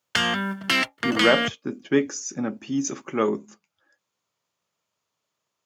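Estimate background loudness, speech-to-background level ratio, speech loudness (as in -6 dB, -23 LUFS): -23.5 LUFS, -2.5 dB, -26.0 LUFS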